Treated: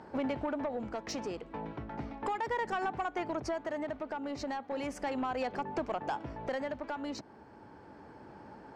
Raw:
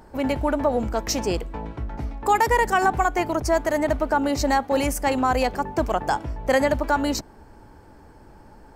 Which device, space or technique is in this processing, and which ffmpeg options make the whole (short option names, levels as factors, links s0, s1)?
AM radio: -af "highpass=140,lowpass=4000,acompressor=threshold=0.0355:ratio=6,asoftclip=type=tanh:threshold=0.0562,tremolo=f=0.35:d=0.39"